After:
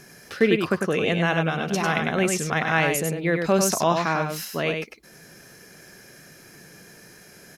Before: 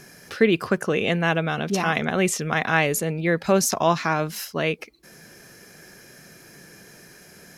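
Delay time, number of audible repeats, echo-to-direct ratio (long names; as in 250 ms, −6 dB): 99 ms, 1, −5.0 dB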